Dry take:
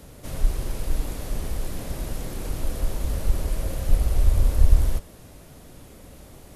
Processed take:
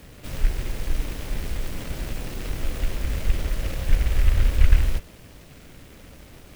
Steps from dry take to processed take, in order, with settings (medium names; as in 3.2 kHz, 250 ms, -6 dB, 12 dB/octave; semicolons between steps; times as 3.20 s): delay time shaken by noise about 1.9 kHz, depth 0.2 ms